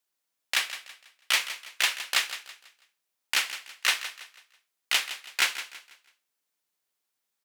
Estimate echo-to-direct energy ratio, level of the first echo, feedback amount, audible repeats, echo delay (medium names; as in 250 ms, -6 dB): -12.0 dB, -12.5 dB, 35%, 3, 164 ms